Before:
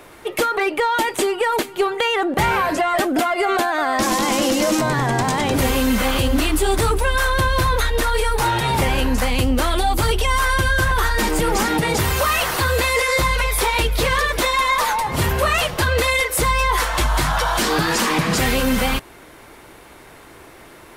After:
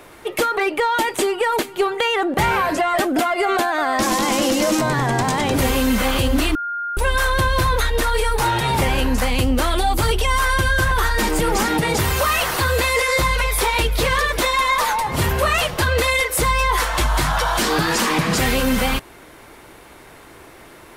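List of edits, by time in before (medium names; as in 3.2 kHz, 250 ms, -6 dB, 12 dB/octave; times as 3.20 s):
6.55–6.97 s: bleep 1.41 kHz -22.5 dBFS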